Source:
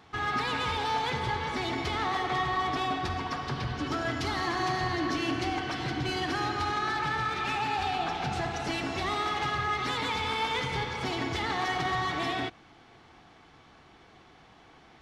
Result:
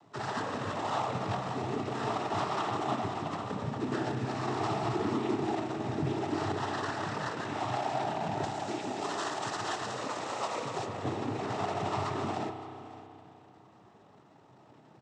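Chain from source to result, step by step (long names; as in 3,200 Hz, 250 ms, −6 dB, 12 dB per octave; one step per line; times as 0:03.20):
running median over 25 samples
0:08.43–0:10.86: bass and treble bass −9 dB, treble +9 dB
cochlear-implant simulation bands 12
single-tap delay 566 ms −18.5 dB
spring reverb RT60 3 s, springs 31 ms, chirp 35 ms, DRR 7 dB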